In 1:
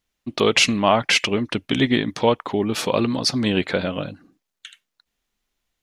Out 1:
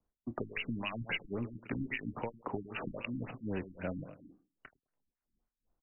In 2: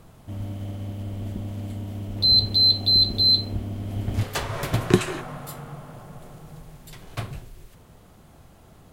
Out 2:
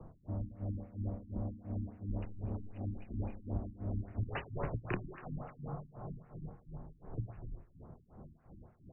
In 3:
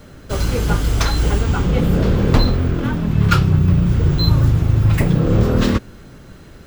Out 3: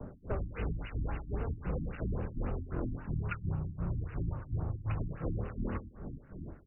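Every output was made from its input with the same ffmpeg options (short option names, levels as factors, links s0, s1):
-filter_complex "[0:a]acrossover=split=330|1400[s0][s1][s2];[s2]acrusher=bits=4:mix=0:aa=0.5[s3];[s0][s1][s3]amix=inputs=3:normalize=0,aemphasis=mode=production:type=50kf,acrossover=split=1600[s4][s5];[s4]aeval=exprs='val(0)*(1-1/2+1/2*cos(2*PI*2.8*n/s))':c=same[s6];[s5]aeval=exprs='val(0)*(1-1/2-1/2*cos(2*PI*2.8*n/s))':c=same[s7];[s6][s7]amix=inputs=2:normalize=0,acompressor=threshold=0.0891:ratio=6,asplit=2[s8][s9];[s9]adelay=26,volume=0.224[s10];[s8][s10]amix=inputs=2:normalize=0,aeval=exprs='0.447*(cos(1*acos(clip(val(0)/0.447,-1,1)))-cos(1*PI/2))+0.0141*(cos(4*acos(clip(val(0)/0.447,-1,1)))-cos(4*PI/2))':c=same,asplit=2[s11][s12];[s12]adelay=104,lowpass=f=4800:p=1,volume=0.178,asplit=2[s13][s14];[s14]adelay=104,lowpass=f=4800:p=1,volume=0.16[s15];[s11][s13][s15]amix=inputs=3:normalize=0,acrossover=split=89|550|2400[s16][s17][s18][s19];[s16]acompressor=threshold=0.0158:ratio=4[s20];[s17]acompressor=threshold=0.01:ratio=4[s21];[s18]acompressor=threshold=0.00794:ratio=4[s22];[s19]acompressor=threshold=0.0501:ratio=4[s23];[s20][s21][s22][s23]amix=inputs=4:normalize=0,afftfilt=real='re*lt(b*sr/1024,310*pow(3000/310,0.5+0.5*sin(2*PI*3.7*pts/sr)))':imag='im*lt(b*sr/1024,310*pow(3000/310,0.5+0.5*sin(2*PI*3.7*pts/sr)))':win_size=1024:overlap=0.75"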